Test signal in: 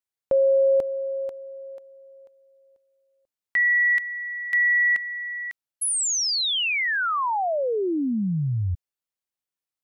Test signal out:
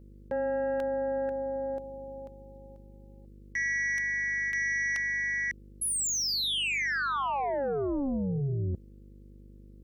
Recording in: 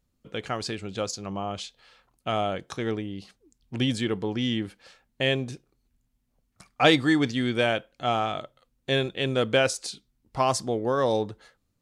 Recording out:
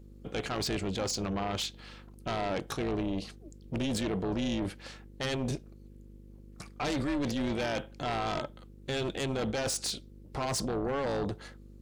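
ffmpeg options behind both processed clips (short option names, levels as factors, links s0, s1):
-af "equalizer=f=300:t=o:w=1:g=3.5,areverse,acompressor=threshold=0.02:ratio=5:attack=15:release=32:knee=1:detection=rms,areverse,aeval=exprs='0.1*sin(PI/2*2.82*val(0)/0.1)':c=same,aeval=exprs='val(0)+0.00794*(sin(2*PI*50*n/s)+sin(2*PI*2*50*n/s)/2+sin(2*PI*3*50*n/s)/3+sin(2*PI*4*50*n/s)/4+sin(2*PI*5*50*n/s)/5)':c=same,tremolo=f=280:d=0.71,volume=0.596"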